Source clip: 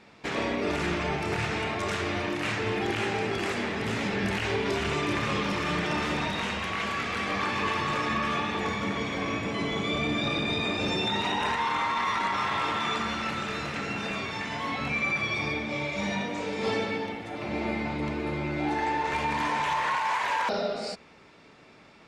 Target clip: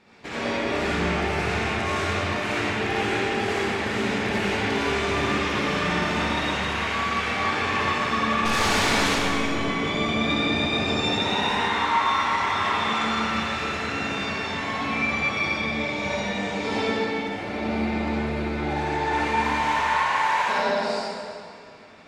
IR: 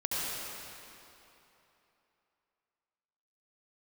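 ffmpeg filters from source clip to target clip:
-filter_complex "[0:a]asettb=1/sr,asplit=3[a][b][c];[a]atrim=end=8.454[d];[b]atrim=start=8.45:end=9.08,asetpts=PTS-STARTPTS,afade=t=in:d=0.004:c=qsin,afade=t=out:st=0.626:d=0.004:c=qsin,aeval=exprs='0.119*(cos(1*acos(clip(val(0)/0.119,-1,1)))-cos(1*PI/2))+0.0596*(cos(8*acos(clip(val(0)/0.119,-1,1)))-cos(8*PI/2))':c=same[e];[c]atrim=start=9.076[f];[d][e]acrossfade=d=0.004:c1=hsin:c2=qsin[g];[g][f]acrossfade=d=0.004:c1=qsin:c2=hsin[h];[1:a]atrim=start_sample=2205,asetrate=61740,aresample=44100[i];[h][i]afir=irnorm=-1:irlink=0"

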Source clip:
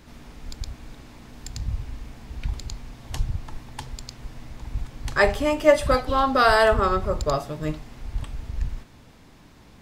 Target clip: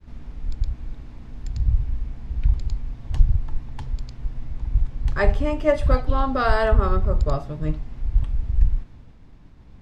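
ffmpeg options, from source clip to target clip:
-af "agate=range=-33dB:threshold=-47dB:ratio=3:detection=peak,aemphasis=mode=reproduction:type=bsi,volume=-4.5dB"

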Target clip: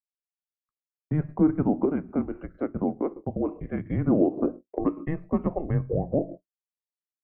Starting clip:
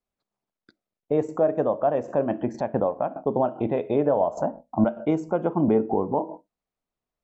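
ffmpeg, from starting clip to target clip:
-filter_complex "[0:a]agate=range=-33dB:threshold=-31dB:ratio=3:detection=peak,asettb=1/sr,asplit=3[a][b][c];[a]atrim=end=1.854[d];[b]atrim=start=1.85:end=3.86,asetpts=PTS-STARTPTS,afade=t=in:d=0.004:c=qsin,afade=t=out:st=2.006:d=0.004:c=qsin,acrossover=split=510[e][f];[e]aeval=exprs='val(0)*(1-0.7/2+0.7/2*cos(2*PI*4.5*n/s))':c=same[g];[f]aeval=exprs='val(0)*(1-0.7/2-0.7/2*cos(2*PI*4.5*n/s))':c=same[h];[g][h]amix=inputs=2:normalize=0[i];[c]atrim=start=3.856[j];[d][i]acrossfade=d=0.004:c1=hsin:c2=qsin[k];[k][j]acrossfade=d=0.004:c1=qsin:c2=hsin,highpass=f=480:t=q:w=0.5412,highpass=f=480:t=q:w=1.307,lowpass=f=2.6k:t=q:w=0.5176,lowpass=f=2.6k:t=q:w=0.7071,lowpass=f=2.6k:t=q:w=1.932,afreqshift=-310,volume=2dB"

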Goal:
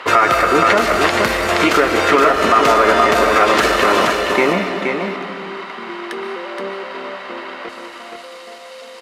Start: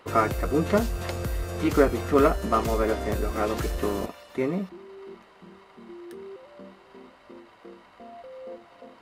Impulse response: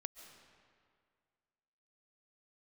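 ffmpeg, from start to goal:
-filter_complex "[0:a]aeval=exprs='if(lt(val(0),0),0.708*val(0),val(0))':c=same,acompressor=threshold=-26dB:ratio=6,asetnsamples=n=441:p=0,asendcmd='7.69 bandpass f 7500',bandpass=f=2k:t=q:w=0.69:csg=0,aecho=1:1:473:0.531[a];[1:a]atrim=start_sample=2205[b];[a][b]afir=irnorm=-1:irlink=0,alimiter=level_in=31.5dB:limit=-1dB:release=50:level=0:latency=1,volume=-1dB"

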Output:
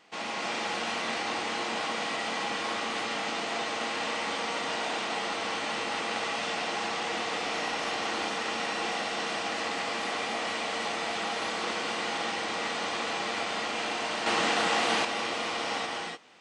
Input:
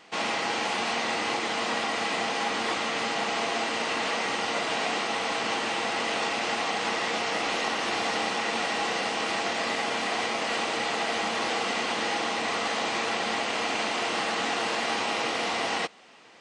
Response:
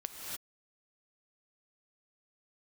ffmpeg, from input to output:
-filter_complex "[1:a]atrim=start_sample=2205[a];[0:a][a]afir=irnorm=-1:irlink=0,asettb=1/sr,asplit=3[b][c][d];[b]atrim=end=14.264[e];[c]atrim=start=14.26:end=15.05,asetpts=PTS-STARTPTS,afade=t=in:d=0.004:c=qsin,afade=t=out:st=0.786:d=0.004:c=qsin,acontrast=31[f];[d]atrim=start=15.046[g];[e][f]acrossfade=d=0.004:c1=hsin:c2=qsin[h];[h][g]acrossfade=d=0.004:c1=qsin:c2=hsin,volume=-4dB"

